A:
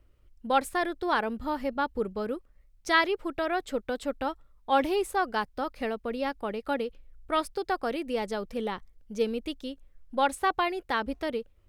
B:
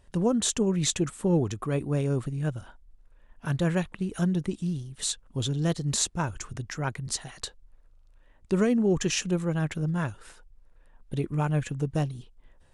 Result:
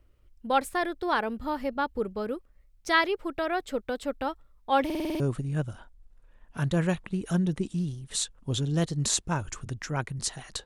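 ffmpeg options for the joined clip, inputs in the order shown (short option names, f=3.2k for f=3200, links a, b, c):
-filter_complex "[0:a]apad=whole_dur=10.65,atrim=end=10.65,asplit=7[a][b][c][d][e][f][g];[a]atrim=end=4.902[h];[b]atrim=start=4.848:end=4.902[i];[c]atrim=start=4.848:end=4.902[j];[d]atrim=start=4.848:end=4.902[k];[e]atrim=start=4.848:end=4.902[l];[f]atrim=start=4.848:end=4.902[m];[g]atrim=start=4.848:end=4.902[n];[1:a]atrim=start=2.078:end=7.53[o];[h][i]acrossfade=d=0.004:c1=hsin:c2=hsin[p];[p][j]acrossfade=d=0.004:c1=hsin:c2=hsin[q];[q][k]acrossfade=d=0.004:c1=hsin:c2=hsin[r];[r][l]acrossfade=d=0.004:c1=hsin:c2=hsin[s];[s][m]acrossfade=d=0.004:c1=hsin:c2=hsin[t];[t][n]acrossfade=d=0.004:c1=hsin:c2=hsin[u];[u][o]acrossfade=d=0.004:c1=hsin:c2=hsin"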